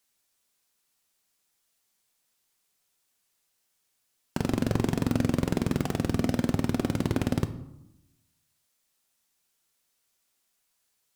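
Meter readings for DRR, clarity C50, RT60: 9.0 dB, 13.5 dB, 0.85 s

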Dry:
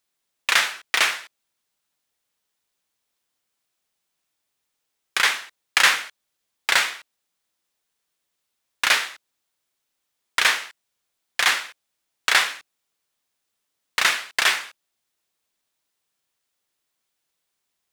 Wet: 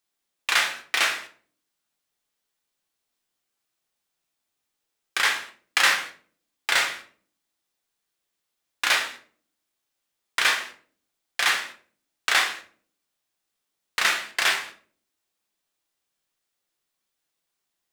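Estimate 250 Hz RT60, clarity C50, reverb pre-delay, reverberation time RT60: 0.75 s, 11.5 dB, 3 ms, 0.45 s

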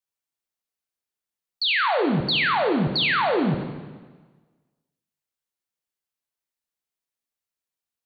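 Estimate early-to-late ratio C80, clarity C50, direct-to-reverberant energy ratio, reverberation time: 7.5 dB, 6.0 dB, 3.5 dB, 1.4 s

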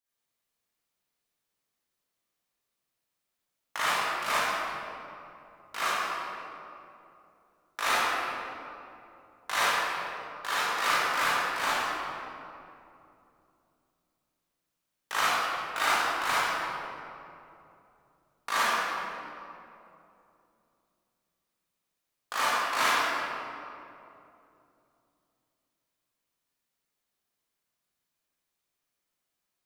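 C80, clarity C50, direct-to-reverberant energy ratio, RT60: -3.0 dB, -7.0 dB, -12.0 dB, 2.8 s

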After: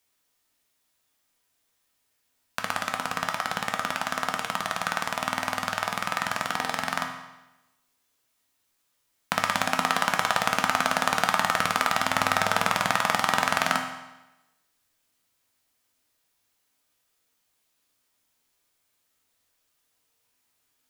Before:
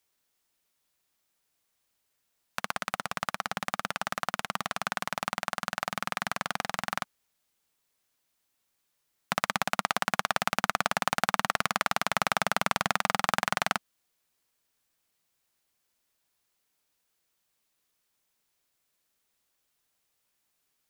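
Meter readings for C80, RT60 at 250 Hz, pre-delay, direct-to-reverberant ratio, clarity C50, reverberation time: 9.0 dB, 1.0 s, 3 ms, 3.0 dB, 6.5 dB, 1.0 s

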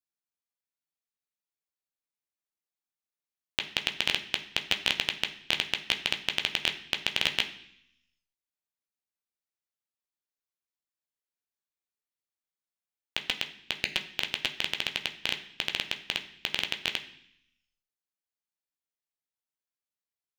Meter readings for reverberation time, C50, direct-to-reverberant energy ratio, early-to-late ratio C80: 0.65 s, 12.0 dB, 4.0 dB, 15.0 dB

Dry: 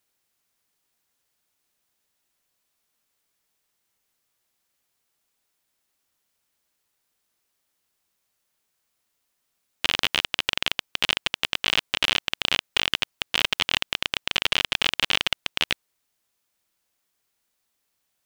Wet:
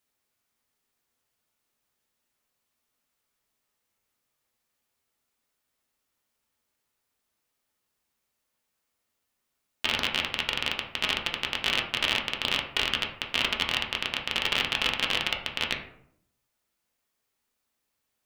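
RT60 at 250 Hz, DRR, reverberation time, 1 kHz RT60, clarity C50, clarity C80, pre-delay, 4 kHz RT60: 0.90 s, -0.5 dB, 0.70 s, 0.65 s, 7.0 dB, 10.5 dB, 3 ms, 0.40 s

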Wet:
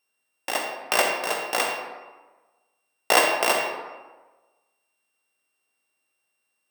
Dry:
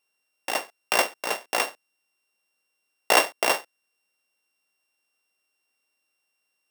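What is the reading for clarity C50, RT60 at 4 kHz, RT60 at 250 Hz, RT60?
3.0 dB, 0.75 s, 1.3 s, 1.3 s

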